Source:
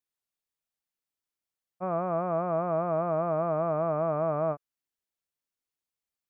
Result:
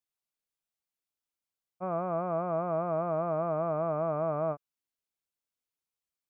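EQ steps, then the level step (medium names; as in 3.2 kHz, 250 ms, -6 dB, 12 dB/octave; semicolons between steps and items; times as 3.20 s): band-stop 1.8 kHz, Q 11; -2.5 dB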